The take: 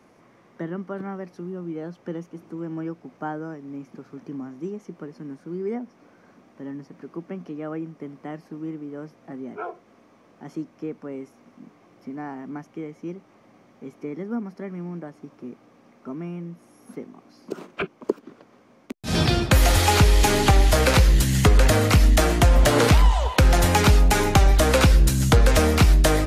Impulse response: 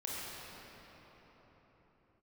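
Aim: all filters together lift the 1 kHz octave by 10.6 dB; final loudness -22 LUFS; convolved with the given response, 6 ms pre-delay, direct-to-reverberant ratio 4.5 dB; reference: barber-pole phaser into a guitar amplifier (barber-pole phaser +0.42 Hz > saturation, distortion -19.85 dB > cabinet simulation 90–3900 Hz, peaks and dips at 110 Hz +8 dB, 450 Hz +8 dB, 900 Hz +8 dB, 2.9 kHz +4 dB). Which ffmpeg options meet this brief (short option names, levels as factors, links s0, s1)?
-filter_complex "[0:a]equalizer=f=1000:t=o:g=7.5,asplit=2[s0][s1];[1:a]atrim=start_sample=2205,adelay=6[s2];[s1][s2]afir=irnorm=-1:irlink=0,volume=0.422[s3];[s0][s3]amix=inputs=2:normalize=0,asplit=2[s4][s5];[s5]afreqshift=0.42[s6];[s4][s6]amix=inputs=2:normalize=1,asoftclip=threshold=0.398,highpass=90,equalizer=f=110:t=q:w=4:g=8,equalizer=f=450:t=q:w=4:g=8,equalizer=f=900:t=q:w=4:g=8,equalizer=f=2900:t=q:w=4:g=4,lowpass=f=3900:w=0.5412,lowpass=f=3900:w=1.3066,volume=0.841"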